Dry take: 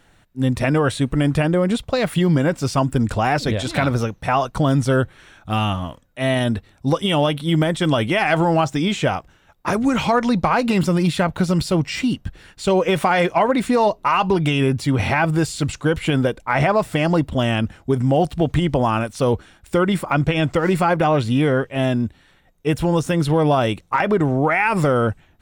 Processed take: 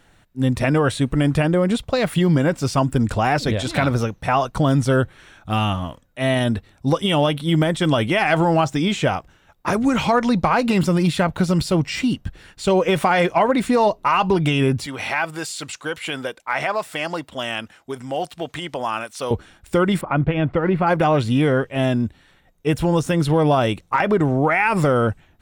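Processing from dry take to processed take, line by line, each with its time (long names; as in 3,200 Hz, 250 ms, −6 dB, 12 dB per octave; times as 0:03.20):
0:14.86–0:19.31: high-pass filter 1,100 Hz 6 dB per octave
0:20.01–0:20.87: high-frequency loss of the air 430 metres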